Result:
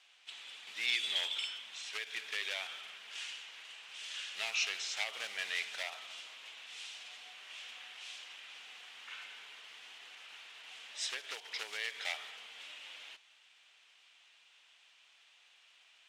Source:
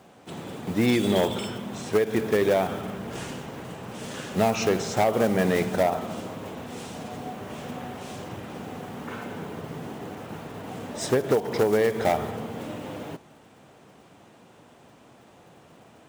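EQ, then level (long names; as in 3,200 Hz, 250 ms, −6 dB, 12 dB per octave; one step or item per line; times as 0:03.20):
four-pole ladder band-pass 3,500 Hz, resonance 35%
+9.5 dB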